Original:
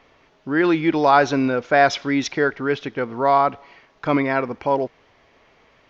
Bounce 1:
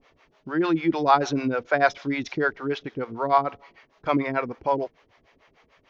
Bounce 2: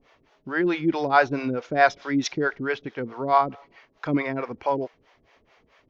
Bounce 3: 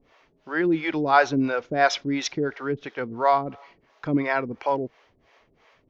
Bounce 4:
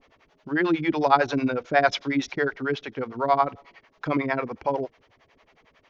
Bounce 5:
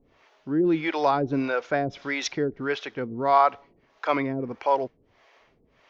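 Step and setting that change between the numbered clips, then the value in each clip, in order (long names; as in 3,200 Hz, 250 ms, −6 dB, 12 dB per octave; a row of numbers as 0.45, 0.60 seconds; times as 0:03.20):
two-band tremolo in antiphase, speed: 6.7, 4.6, 2.9, 11, 1.6 Hertz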